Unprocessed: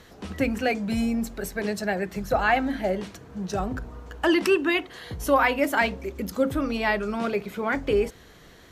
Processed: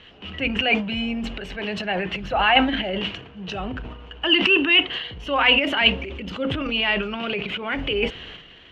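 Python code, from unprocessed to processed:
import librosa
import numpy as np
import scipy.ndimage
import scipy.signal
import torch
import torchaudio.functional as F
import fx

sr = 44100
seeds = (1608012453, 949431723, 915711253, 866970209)

y = fx.dynamic_eq(x, sr, hz=910.0, q=1.4, threshold_db=-37.0, ratio=4.0, max_db=7, at=(0.56, 2.68))
y = fx.transient(y, sr, attack_db=-4, sustain_db=10)
y = fx.lowpass_res(y, sr, hz=2900.0, q=10.0)
y = y * librosa.db_to_amplitude(-2.5)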